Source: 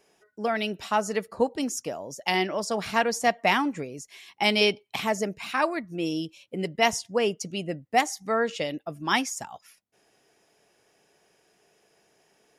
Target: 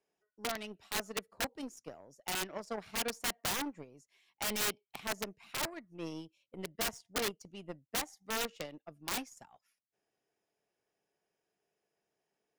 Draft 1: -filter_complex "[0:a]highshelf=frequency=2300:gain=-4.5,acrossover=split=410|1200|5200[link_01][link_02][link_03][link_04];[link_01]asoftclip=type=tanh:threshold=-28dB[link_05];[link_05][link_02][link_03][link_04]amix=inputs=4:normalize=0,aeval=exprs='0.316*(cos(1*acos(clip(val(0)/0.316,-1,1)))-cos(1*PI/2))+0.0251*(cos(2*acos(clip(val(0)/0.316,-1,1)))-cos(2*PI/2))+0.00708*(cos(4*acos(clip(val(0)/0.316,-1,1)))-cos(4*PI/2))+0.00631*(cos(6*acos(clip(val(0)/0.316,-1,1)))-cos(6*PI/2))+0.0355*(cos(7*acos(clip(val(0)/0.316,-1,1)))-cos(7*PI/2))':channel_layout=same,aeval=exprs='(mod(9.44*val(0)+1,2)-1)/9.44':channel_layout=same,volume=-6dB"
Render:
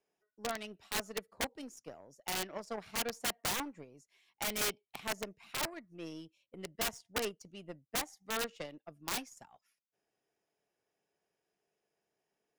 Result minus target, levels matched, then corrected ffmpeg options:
soft clipping: distortion +18 dB
-filter_complex "[0:a]highshelf=frequency=2300:gain=-4.5,acrossover=split=410|1200|5200[link_01][link_02][link_03][link_04];[link_01]asoftclip=type=tanh:threshold=-16.5dB[link_05];[link_05][link_02][link_03][link_04]amix=inputs=4:normalize=0,aeval=exprs='0.316*(cos(1*acos(clip(val(0)/0.316,-1,1)))-cos(1*PI/2))+0.0251*(cos(2*acos(clip(val(0)/0.316,-1,1)))-cos(2*PI/2))+0.00708*(cos(4*acos(clip(val(0)/0.316,-1,1)))-cos(4*PI/2))+0.00631*(cos(6*acos(clip(val(0)/0.316,-1,1)))-cos(6*PI/2))+0.0355*(cos(7*acos(clip(val(0)/0.316,-1,1)))-cos(7*PI/2))':channel_layout=same,aeval=exprs='(mod(9.44*val(0)+1,2)-1)/9.44':channel_layout=same,volume=-6dB"

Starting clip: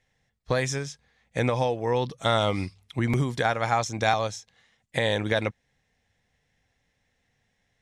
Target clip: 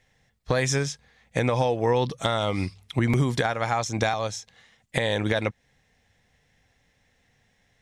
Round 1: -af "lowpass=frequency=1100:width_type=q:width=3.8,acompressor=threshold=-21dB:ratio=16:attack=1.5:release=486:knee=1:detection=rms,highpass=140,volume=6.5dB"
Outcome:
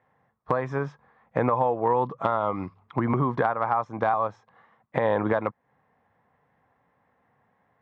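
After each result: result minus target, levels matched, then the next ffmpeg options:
125 Hz band −5.0 dB; 1,000 Hz band +4.5 dB
-af "lowpass=frequency=1100:width_type=q:width=3.8,acompressor=threshold=-21dB:ratio=16:attack=1.5:release=486:knee=1:detection=rms,volume=6.5dB"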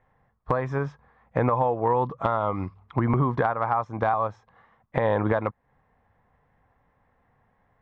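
1,000 Hz band +4.0 dB
-af "acompressor=threshold=-21dB:ratio=16:attack=1.5:release=486:knee=1:detection=rms,volume=6.5dB"

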